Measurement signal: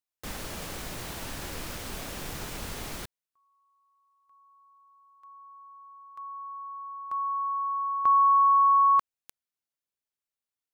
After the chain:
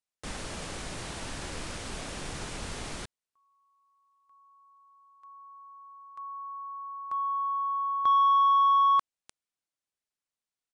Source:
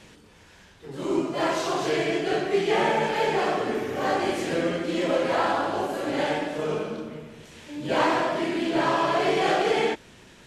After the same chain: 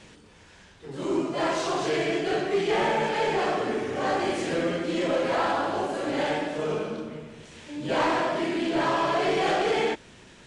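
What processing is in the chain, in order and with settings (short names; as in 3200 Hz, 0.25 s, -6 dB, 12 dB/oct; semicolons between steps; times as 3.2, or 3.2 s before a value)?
downsampling 22050 Hz; soft clip -16.5 dBFS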